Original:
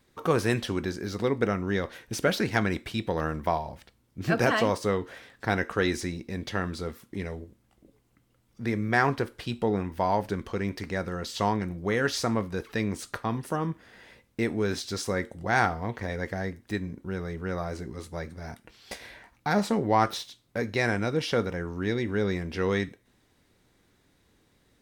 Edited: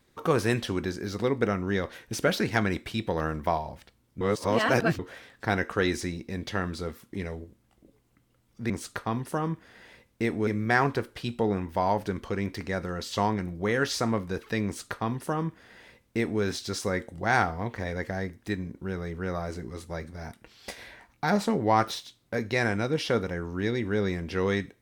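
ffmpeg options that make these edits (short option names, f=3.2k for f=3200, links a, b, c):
-filter_complex "[0:a]asplit=5[a][b][c][d][e];[a]atrim=end=4.212[f];[b]atrim=start=4.208:end=4.992,asetpts=PTS-STARTPTS,areverse[g];[c]atrim=start=4.988:end=8.702[h];[d]atrim=start=12.878:end=14.652[i];[e]atrim=start=8.698[j];[f][g]acrossfade=d=0.004:c1=hsin:c2=hsin[k];[k][h]acrossfade=d=0.004:c1=hsin:c2=hsin[l];[l][i]acrossfade=d=0.004:c1=hsin:c2=hsin[m];[m][j]acrossfade=d=0.004:c1=hsin:c2=hsin"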